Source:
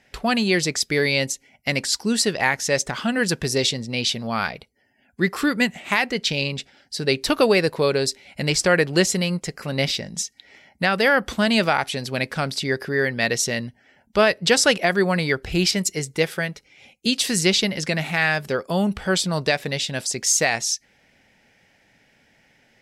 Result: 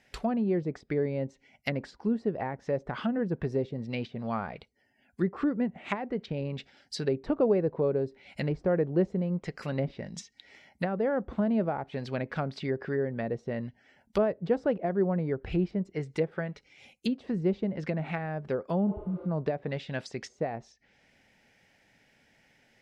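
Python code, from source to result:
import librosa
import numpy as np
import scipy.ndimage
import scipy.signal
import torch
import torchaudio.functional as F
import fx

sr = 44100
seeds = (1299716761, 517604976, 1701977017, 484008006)

y = fx.env_lowpass_down(x, sr, base_hz=620.0, full_db=-18.5)
y = fx.spec_repair(y, sr, seeds[0], start_s=18.91, length_s=0.32, low_hz=310.0, high_hz=10000.0, source='both')
y = F.gain(torch.from_numpy(y), -5.5).numpy()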